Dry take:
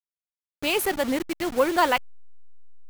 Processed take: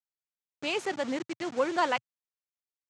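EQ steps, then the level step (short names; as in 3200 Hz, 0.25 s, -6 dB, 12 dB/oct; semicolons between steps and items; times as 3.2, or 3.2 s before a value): elliptic band-pass 120–7100 Hz, stop band 40 dB; -6.0 dB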